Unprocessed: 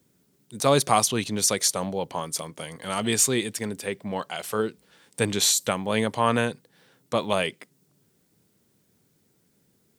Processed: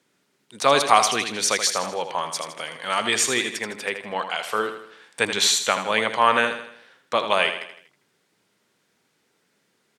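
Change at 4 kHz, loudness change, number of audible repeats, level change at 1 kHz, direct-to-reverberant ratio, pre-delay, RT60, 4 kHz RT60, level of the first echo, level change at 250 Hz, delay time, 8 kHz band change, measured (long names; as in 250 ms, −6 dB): +5.0 dB, +2.5 dB, 4, +6.0 dB, no reverb audible, no reverb audible, no reverb audible, no reverb audible, −9.0 dB, −5.0 dB, 80 ms, −0.5 dB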